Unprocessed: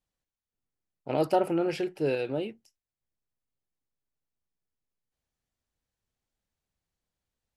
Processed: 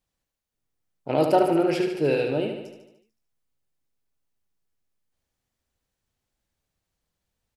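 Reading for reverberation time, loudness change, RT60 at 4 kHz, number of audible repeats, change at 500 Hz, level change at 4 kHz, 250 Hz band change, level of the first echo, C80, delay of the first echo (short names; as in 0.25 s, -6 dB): none, +6.0 dB, none, 7, +6.0 dB, +6.0 dB, +6.0 dB, -6.5 dB, none, 74 ms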